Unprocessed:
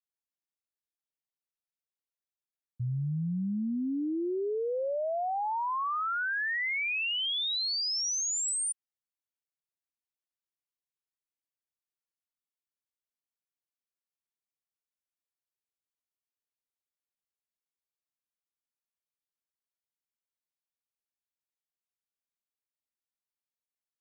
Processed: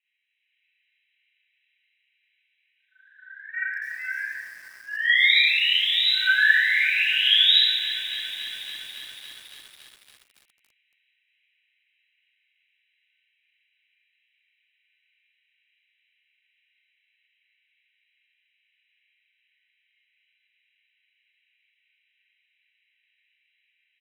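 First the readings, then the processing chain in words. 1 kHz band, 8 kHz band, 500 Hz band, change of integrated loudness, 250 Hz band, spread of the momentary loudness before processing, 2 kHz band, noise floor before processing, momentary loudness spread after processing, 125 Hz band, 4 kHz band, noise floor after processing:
below −20 dB, −17.0 dB, below −25 dB, +10.5 dB, below −30 dB, 5 LU, +13.5 dB, below −85 dBFS, 19 LU, below −30 dB, +13.5 dB, −73 dBFS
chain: high-shelf EQ 2,500 Hz +3 dB
automatic gain control gain up to 5.5 dB
brickwall limiter −25.5 dBFS, peak gain reduction 5.5 dB
echo with shifted repeats 86 ms, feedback 35%, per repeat +35 Hz, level −16 dB
flanger 0.62 Hz, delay 3.3 ms, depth 3.7 ms, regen +86%
phaser with its sweep stopped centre 2,400 Hz, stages 8
sine wavefolder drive 20 dB, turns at −23.5 dBFS
linear-phase brick-wall band-pass 1,500–4,000 Hz
four-comb reverb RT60 1 s, combs from 29 ms, DRR −8 dB
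feedback echo at a low word length 281 ms, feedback 80%, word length 7 bits, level −13 dB
level +2 dB

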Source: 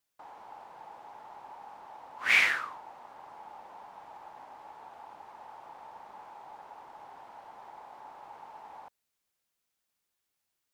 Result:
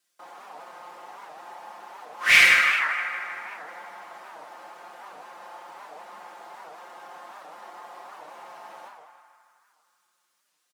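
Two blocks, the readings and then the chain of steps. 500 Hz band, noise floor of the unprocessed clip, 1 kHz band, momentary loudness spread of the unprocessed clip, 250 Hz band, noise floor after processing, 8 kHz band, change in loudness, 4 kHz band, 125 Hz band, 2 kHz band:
+7.5 dB, −83 dBFS, +7.0 dB, 15 LU, +6.5 dB, −74 dBFS, +12.5 dB, +7.0 dB, +11.0 dB, can't be measured, +9.5 dB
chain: running median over 3 samples
Bessel high-pass filter 280 Hz, order 8
parametric band 880 Hz −10 dB 0.27 octaves
on a send: feedback echo with a band-pass in the loop 156 ms, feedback 71%, band-pass 1,400 Hz, level −5 dB
on the sum: coupled-rooms reverb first 0.9 s, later 3 s, from −19 dB, DRR 2.5 dB
in parallel at −11 dB: asymmetric clip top −27 dBFS
on the sum: parametric band 11,000 Hz +6.5 dB 1.7 octaves
comb filter 5.7 ms
wow of a warped record 78 rpm, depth 250 cents
level +3 dB

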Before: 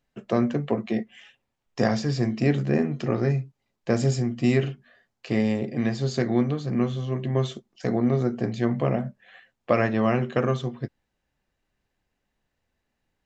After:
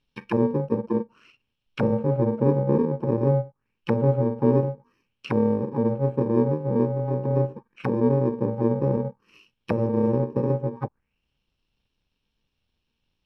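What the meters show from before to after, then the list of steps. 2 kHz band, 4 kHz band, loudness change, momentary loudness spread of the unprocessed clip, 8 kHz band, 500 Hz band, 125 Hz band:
−9.0 dB, below −10 dB, +1.0 dB, 9 LU, can't be measured, +3.0 dB, +1.0 dB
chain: samples in bit-reversed order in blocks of 64 samples
in parallel at −11.5 dB: soft clipping −19.5 dBFS, distortion −11 dB
on the sum: envelope-controlled low-pass 600–3,500 Hz down, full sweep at −23 dBFS

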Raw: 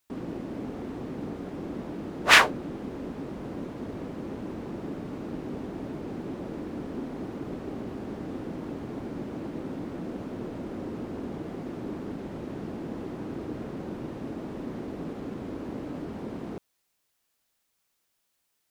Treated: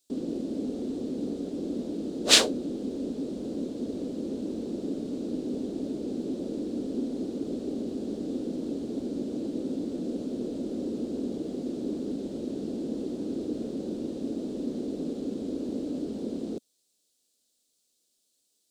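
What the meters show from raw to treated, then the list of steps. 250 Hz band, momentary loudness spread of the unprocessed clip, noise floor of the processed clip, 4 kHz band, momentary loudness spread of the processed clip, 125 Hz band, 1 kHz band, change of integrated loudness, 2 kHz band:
+4.0 dB, 1 LU, −74 dBFS, +3.0 dB, 2 LU, −4.5 dB, −11.5 dB, +0.5 dB, −11.0 dB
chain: octave-band graphic EQ 125/250/500/1,000/2,000/4,000/8,000 Hz −6/+11/+9/−10/−9/+11/+12 dB
level −5.5 dB

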